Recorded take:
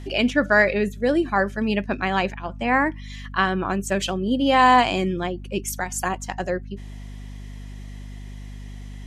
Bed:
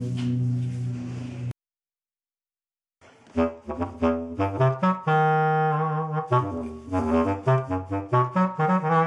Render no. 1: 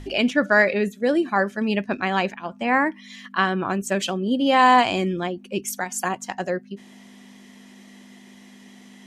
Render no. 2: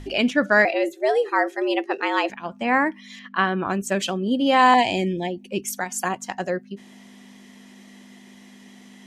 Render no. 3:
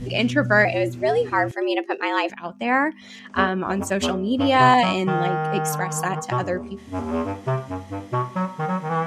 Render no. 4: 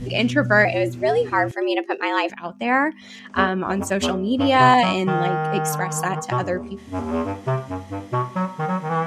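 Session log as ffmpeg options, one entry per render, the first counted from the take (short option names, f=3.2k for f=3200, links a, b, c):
-af "bandreject=f=50:t=h:w=4,bandreject=f=100:t=h:w=4,bandreject=f=150:t=h:w=4"
-filter_complex "[0:a]asettb=1/sr,asplit=3[a][b][c];[a]atrim=end=0.654[d];[b]atrim=start=0.65:end=2.3,asetpts=PTS-STARTPTS,afade=t=in:d=0.004:c=qsin,afade=t=out:st=1.646:d=0.004:c=qsin,afreqshift=140[e];[c]atrim=start=2.296[f];[d][e]acrossfade=d=0.004:c1=hsin:c2=qsin[g];[g][f]acrossfade=d=0.004:c1=qsin:c2=hsin,asettb=1/sr,asplit=3[h][i][j];[h]atrim=end=3.194[k];[i]atrim=start=3.19:end=3.67,asetpts=PTS-STARTPTS,afade=t=in:d=0.004:c=qsin,afade=t=out:st=0.476:d=0.004:c=qsin,highpass=110,lowpass=3.5k[l];[j]atrim=start=3.666[m];[k][l]acrossfade=d=0.004:c1=hsin:c2=qsin[n];[n][m]acrossfade=d=0.004:c1=qsin:c2=hsin,asettb=1/sr,asplit=3[o][p][q];[o]atrim=end=4.744[r];[p]atrim=start=4.74:end=5.48,asetpts=PTS-STARTPTS,afade=t=in:d=0.004:c=qsin,afade=t=out:st=0.736:d=0.004:c=qsin,asuperstop=centerf=1300:order=12:qfactor=1.7[s];[q]atrim=start=5.476[t];[r][s]acrossfade=d=0.004:c1=hsin:c2=qsin[u];[u][t]acrossfade=d=0.004:c1=qsin:c2=hsin"
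-filter_complex "[1:a]volume=-3dB[a];[0:a][a]amix=inputs=2:normalize=0"
-af "volume=1dB"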